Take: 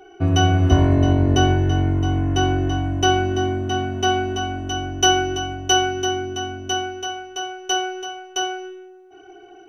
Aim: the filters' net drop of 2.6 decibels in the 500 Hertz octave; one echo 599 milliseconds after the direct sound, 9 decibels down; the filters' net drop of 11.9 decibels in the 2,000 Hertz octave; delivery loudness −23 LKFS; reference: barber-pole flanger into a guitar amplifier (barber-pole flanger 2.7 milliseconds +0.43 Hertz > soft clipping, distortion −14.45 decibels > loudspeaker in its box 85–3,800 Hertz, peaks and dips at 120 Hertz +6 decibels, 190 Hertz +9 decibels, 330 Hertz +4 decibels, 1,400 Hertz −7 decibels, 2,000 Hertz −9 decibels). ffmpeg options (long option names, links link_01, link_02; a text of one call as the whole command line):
ffmpeg -i in.wav -filter_complex "[0:a]equalizer=frequency=500:width_type=o:gain=-8,equalizer=frequency=2000:width_type=o:gain=-7.5,aecho=1:1:599:0.355,asplit=2[link_01][link_02];[link_02]adelay=2.7,afreqshift=0.43[link_03];[link_01][link_03]amix=inputs=2:normalize=1,asoftclip=threshold=-15dB,highpass=85,equalizer=frequency=120:width_type=q:width=4:gain=6,equalizer=frequency=190:width_type=q:width=4:gain=9,equalizer=frequency=330:width_type=q:width=4:gain=4,equalizer=frequency=1400:width_type=q:width=4:gain=-7,equalizer=frequency=2000:width_type=q:width=4:gain=-9,lowpass=frequency=3800:width=0.5412,lowpass=frequency=3800:width=1.3066,volume=2.5dB" out.wav